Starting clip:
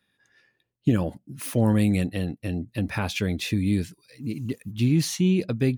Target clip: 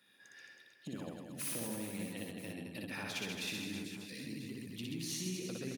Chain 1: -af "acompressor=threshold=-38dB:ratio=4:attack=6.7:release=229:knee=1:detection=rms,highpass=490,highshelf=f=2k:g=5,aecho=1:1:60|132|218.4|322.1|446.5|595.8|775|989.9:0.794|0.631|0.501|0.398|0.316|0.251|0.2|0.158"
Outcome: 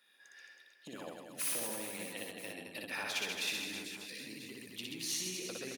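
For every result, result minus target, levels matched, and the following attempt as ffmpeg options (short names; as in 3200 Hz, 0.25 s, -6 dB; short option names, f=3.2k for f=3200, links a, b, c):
250 Hz band -8.5 dB; compressor: peak gain reduction -4.5 dB
-af "acompressor=threshold=-38dB:ratio=4:attack=6.7:release=229:knee=1:detection=rms,highpass=190,highshelf=f=2k:g=5,aecho=1:1:60|132|218.4|322.1|446.5|595.8|775|989.9:0.794|0.631|0.501|0.398|0.316|0.251|0.2|0.158"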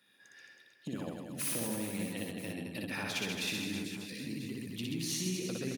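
compressor: peak gain reduction -4.5 dB
-af "acompressor=threshold=-44dB:ratio=4:attack=6.7:release=229:knee=1:detection=rms,highpass=190,highshelf=f=2k:g=5,aecho=1:1:60|132|218.4|322.1|446.5|595.8|775|989.9:0.794|0.631|0.501|0.398|0.316|0.251|0.2|0.158"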